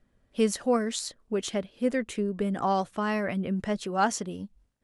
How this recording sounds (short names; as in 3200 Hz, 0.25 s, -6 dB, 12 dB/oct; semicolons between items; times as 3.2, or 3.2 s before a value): noise floor -70 dBFS; spectral tilt -4.5 dB/oct